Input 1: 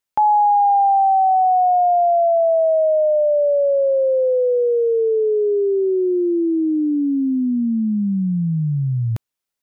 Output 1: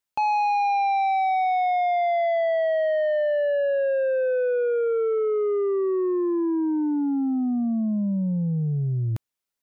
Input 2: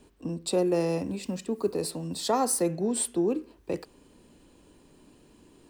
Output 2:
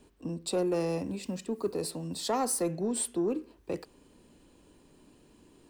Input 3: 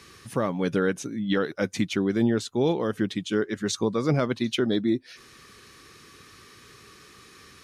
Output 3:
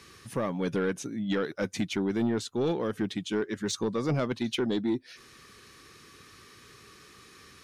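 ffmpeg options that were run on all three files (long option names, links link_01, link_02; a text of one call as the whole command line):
ffmpeg -i in.wav -af "asoftclip=type=tanh:threshold=-17.5dB,volume=-2.5dB" out.wav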